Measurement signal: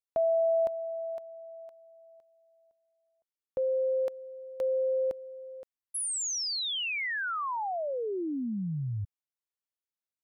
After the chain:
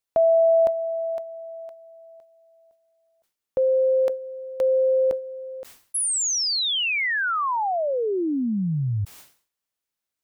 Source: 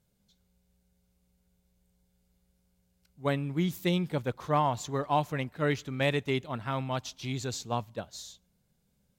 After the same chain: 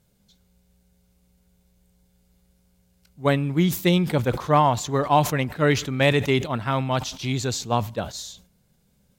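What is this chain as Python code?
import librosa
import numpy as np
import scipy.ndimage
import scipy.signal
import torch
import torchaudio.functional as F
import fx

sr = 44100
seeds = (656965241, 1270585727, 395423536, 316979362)

y = fx.sustainer(x, sr, db_per_s=130.0)
y = F.gain(torch.from_numpy(y), 8.5).numpy()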